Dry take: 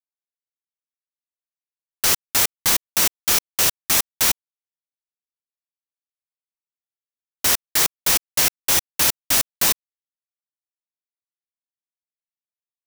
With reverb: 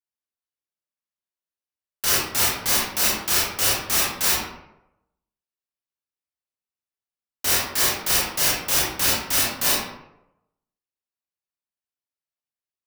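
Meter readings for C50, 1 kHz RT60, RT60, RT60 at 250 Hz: −0.5 dB, 0.80 s, 0.85 s, 0.80 s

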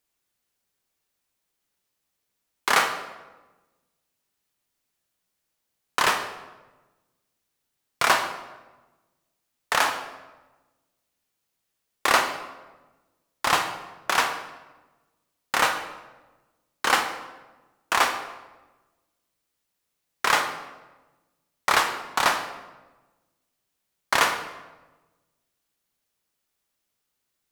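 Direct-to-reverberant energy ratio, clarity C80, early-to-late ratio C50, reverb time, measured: 6.0 dB, 10.5 dB, 8.5 dB, 1.2 s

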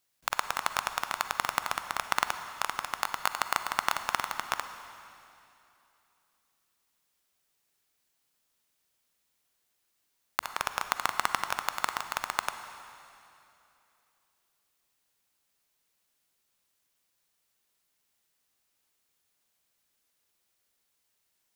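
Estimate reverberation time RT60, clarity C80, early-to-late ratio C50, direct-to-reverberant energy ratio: 2.9 s, 10.0 dB, 9.5 dB, 9.0 dB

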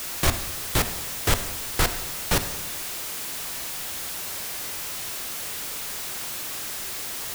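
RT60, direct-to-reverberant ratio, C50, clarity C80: 0.95 s, 9.0 dB, 11.0 dB, 13.5 dB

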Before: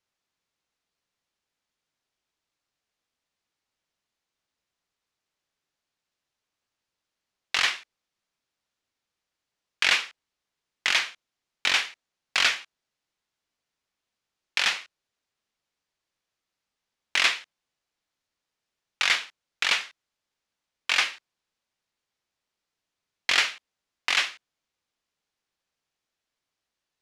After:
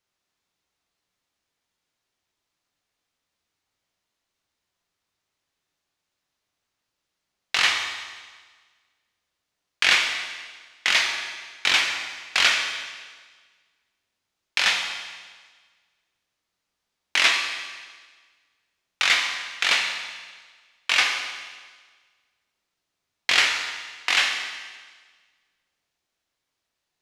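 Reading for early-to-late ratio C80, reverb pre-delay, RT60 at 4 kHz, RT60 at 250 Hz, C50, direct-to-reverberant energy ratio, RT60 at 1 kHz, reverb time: 6.0 dB, 11 ms, 1.5 s, 1.5 s, 4.5 dB, 2.0 dB, 1.5 s, 1.5 s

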